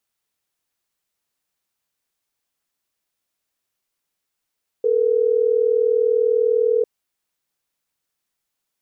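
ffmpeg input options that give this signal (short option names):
-f lavfi -i "aevalsrc='0.133*(sin(2*PI*440*t)+sin(2*PI*480*t))*clip(min(mod(t,6),2-mod(t,6))/0.005,0,1)':d=3.12:s=44100"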